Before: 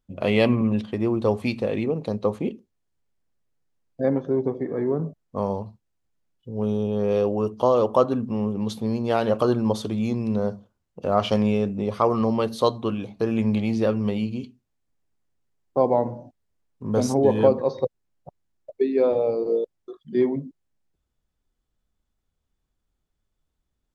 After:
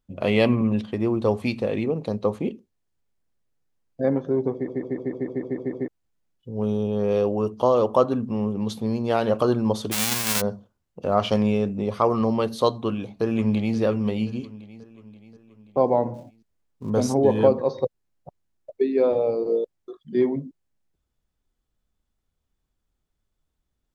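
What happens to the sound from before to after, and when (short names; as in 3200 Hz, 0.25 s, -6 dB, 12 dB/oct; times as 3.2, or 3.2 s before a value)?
4.53 stutter in place 0.15 s, 9 plays
9.91–10.4 spectral whitening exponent 0.1
12.72–13.77 echo throw 0.53 s, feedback 55%, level -14.5 dB
16.14–16.9 switching dead time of 0.082 ms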